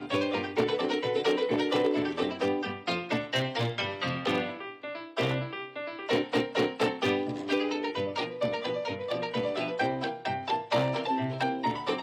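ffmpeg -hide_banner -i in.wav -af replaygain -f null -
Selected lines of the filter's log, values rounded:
track_gain = +10.0 dB
track_peak = 0.140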